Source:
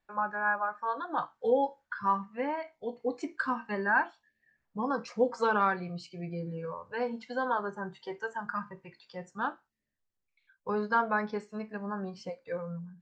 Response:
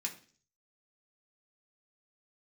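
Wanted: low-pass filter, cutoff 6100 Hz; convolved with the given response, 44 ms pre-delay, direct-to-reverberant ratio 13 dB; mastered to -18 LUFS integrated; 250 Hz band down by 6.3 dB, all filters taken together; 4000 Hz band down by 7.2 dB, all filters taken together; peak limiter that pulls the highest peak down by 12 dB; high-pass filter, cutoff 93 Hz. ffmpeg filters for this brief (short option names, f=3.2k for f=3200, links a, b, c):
-filter_complex "[0:a]highpass=93,lowpass=6.1k,equalizer=f=250:t=o:g=-8,equalizer=f=4k:t=o:g=-8.5,alimiter=level_in=4dB:limit=-24dB:level=0:latency=1,volume=-4dB,asplit=2[a][b];[1:a]atrim=start_sample=2205,adelay=44[c];[b][c]afir=irnorm=-1:irlink=0,volume=-13.5dB[d];[a][d]amix=inputs=2:normalize=0,volume=21dB"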